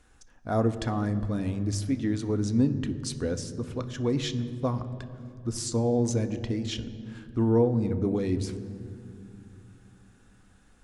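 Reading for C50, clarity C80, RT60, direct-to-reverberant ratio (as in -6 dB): 13.0 dB, 13.5 dB, 2.6 s, 9.0 dB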